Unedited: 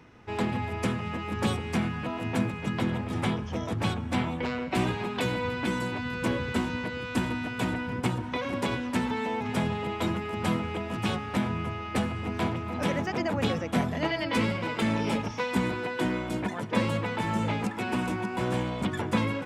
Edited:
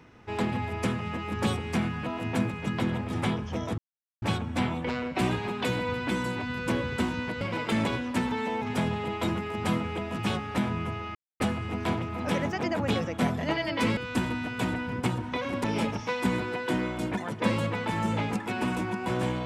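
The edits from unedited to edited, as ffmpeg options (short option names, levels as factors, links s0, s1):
-filter_complex "[0:a]asplit=7[s0][s1][s2][s3][s4][s5][s6];[s0]atrim=end=3.78,asetpts=PTS-STARTPTS,afade=t=out:st=3.776:d=0.004:c=hsin,apad=pad_dur=0.44[s7];[s1]atrim=start=3.78:end=6.972,asetpts=PTS-STARTPTS,afade=t=in:d=0.004:c=hsin[s8];[s2]atrim=start=14.508:end=14.952[s9];[s3]atrim=start=8.638:end=11.94,asetpts=PTS-STARTPTS,afade=t=out:st=3.298:d=0.004:c=hsin,apad=pad_dur=0.25[s10];[s4]atrim=start=11.94:end=14.512,asetpts=PTS-STARTPTS,afade=t=in:d=0.004:c=hsin[s11];[s5]atrim=start=6.968:end=8.642[s12];[s6]atrim=start=14.948[s13];[s7][s8]concat=n=2:v=0:a=1[s14];[s14][s9]acrossfade=d=0.004:c1=hsin:c2=hsin[s15];[s10][s11]concat=n=2:v=0:a=1[s16];[s15][s16]acrossfade=d=0.004:c1=hsin:c2=hsin[s17];[s17][s12]acrossfade=d=0.004:c1=hsin:c2=hsin[s18];[s18][s13]acrossfade=d=0.004:c1=hsin:c2=hsin"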